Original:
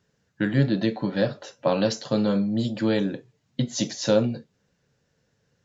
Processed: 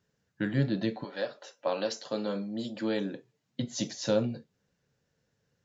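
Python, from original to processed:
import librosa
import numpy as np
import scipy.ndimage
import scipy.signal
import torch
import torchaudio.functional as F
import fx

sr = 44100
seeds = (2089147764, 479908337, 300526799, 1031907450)

y = fx.highpass(x, sr, hz=fx.line((1.03, 540.0), (3.62, 140.0)), slope=12, at=(1.03, 3.62), fade=0.02)
y = y * librosa.db_to_amplitude(-6.5)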